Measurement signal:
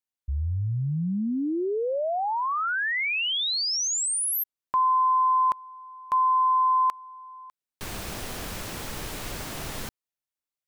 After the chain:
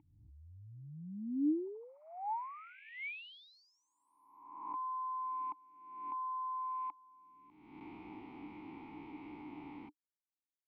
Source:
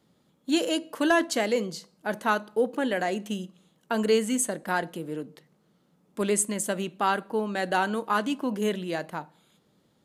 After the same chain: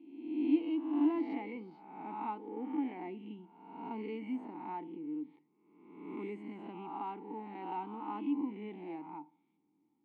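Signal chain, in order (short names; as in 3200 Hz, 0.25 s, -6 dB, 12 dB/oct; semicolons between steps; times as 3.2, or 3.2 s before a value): spectral swells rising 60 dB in 1.07 s; vowel filter u; air absorption 410 m; gain -1.5 dB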